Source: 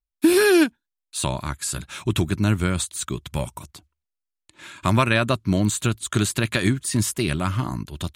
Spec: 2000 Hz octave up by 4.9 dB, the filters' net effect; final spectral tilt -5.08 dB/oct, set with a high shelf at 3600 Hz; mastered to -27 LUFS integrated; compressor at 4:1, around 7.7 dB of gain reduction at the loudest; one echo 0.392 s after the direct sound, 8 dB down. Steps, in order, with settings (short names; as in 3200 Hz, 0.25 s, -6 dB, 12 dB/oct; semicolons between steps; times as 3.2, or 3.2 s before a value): bell 2000 Hz +9 dB; high shelf 3600 Hz -8.5 dB; compressor 4:1, threshold -21 dBFS; echo 0.392 s -8 dB; gain -0.5 dB